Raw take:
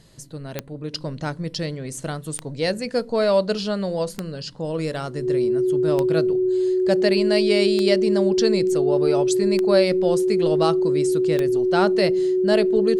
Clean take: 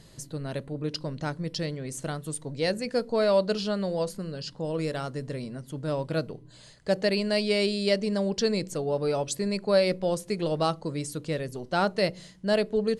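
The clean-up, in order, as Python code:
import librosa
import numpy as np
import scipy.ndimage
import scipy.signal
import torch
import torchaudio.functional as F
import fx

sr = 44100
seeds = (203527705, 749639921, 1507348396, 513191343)

y = fx.fix_declick_ar(x, sr, threshold=10.0)
y = fx.notch(y, sr, hz=370.0, q=30.0)
y = fx.fix_level(y, sr, at_s=0.93, step_db=-4.0)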